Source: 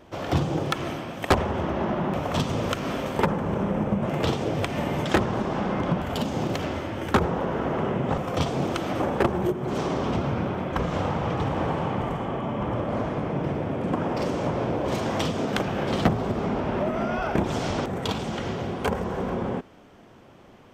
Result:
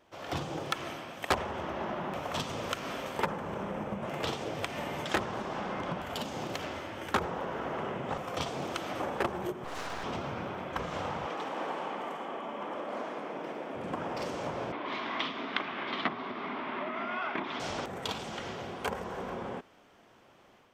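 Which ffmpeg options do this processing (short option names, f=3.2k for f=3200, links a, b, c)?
-filter_complex "[0:a]asettb=1/sr,asplit=3[a][b][c];[a]atrim=end=9.644[d];[b]atrim=start=9.64:end=10.04,asetpts=PTS-STARTPTS,afade=t=in:d=0.004:c=qsin,afade=t=out:st=0.396:d=0.004:c=qsin,aeval=exprs='abs(val(0))':c=same[e];[c]atrim=start=10.036[f];[d][e]acrossfade=d=0.004:c1=hsin:c2=qsin[g];[g][f]acrossfade=d=0.004:c1=qsin:c2=hsin,asettb=1/sr,asplit=3[h][i][j];[h]atrim=end=11.264[k];[i]atrim=start=11.26:end=13.75,asetpts=PTS-STARTPTS,afade=t=in:d=0.004:c=qsin,afade=t=out:st=2.486:d=0.004:c=qsin,highpass=f=220:w=0.5412,highpass=f=220:w=1.3066[l];[j]atrim=start=13.746[m];[k][l]acrossfade=d=0.004:c1=hsin:c2=qsin[n];[n][m]acrossfade=d=0.004:c1=qsin:c2=hsin,asettb=1/sr,asplit=3[o][p][q];[o]atrim=end=14.724[r];[p]atrim=start=14.72:end=17.6,asetpts=PTS-STARTPTS,afade=t=in:d=0.004:c=qsin,afade=t=out:st=2.876:d=0.004:c=qsin,highpass=260,equalizer=f=260:t=q:w=4:g=6,equalizer=f=510:t=q:w=4:g=-10,equalizer=f=780:t=q:w=4:g=-4,equalizer=f=1.1k:t=q:w=4:g=6,equalizer=f=2.1k:t=q:w=4:g=7,equalizer=f=3.6k:t=q:w=4:g=4,lowpass=f=4k:w=0.5412,lowpass=f=4k:w=1.3066[s];[q]atrim=start=17.596[t];[r][s]acrossfade=d=0.004:c1=hsin:c2=qsin[u];[u][t]acrossfade=d=0.004:c1=qsin:c2=hsin,lowshelf=f=430:g=-11.5,dynaudnorm=f=170:g=3:m=5dB,volume=-9dB"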